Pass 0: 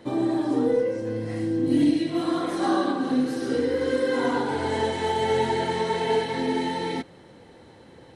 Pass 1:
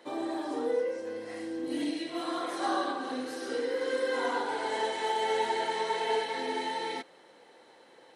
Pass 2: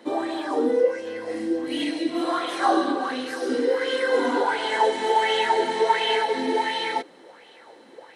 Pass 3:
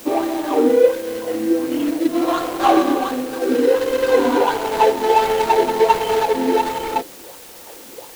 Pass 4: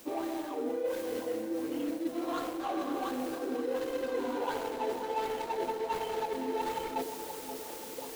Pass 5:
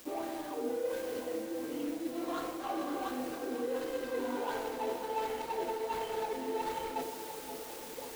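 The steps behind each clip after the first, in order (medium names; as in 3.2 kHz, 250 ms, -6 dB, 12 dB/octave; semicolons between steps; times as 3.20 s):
high-pass 500 Hz 12 dB/octave; trim -3 dB
sweeping bell 1.4 Hz 230–3200 Hz +12 dB; trim +4.5 dB
median filter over 25 samples; in parallel at -9.5 dB: word length cut 6-bit, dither triangular; on the sum: trim +5 dB
reverse; compression 5:1, threshold -27 dBFS, peak gain reduction 17.5 dB; reverse; tape echo 529 ms, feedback 71%, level -7 dB, low-pass 1.1 kHz; trim -6 dB
bit crusher 8-bit; reverberation RT60 0.35 s, pre-delay 18 ms, DRR 6 dB; trim -3 dB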